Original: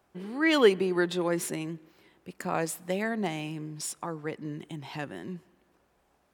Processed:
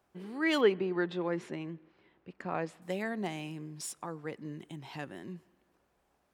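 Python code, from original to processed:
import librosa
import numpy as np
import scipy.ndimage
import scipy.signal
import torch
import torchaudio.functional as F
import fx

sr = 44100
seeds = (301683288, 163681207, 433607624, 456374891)

y = fx.lowpass(x, sr, hz=3000.0, slope=12, at=(0.61, 2.82))
y = F.gain(torch.from_numpy(y), -5.0).numpy()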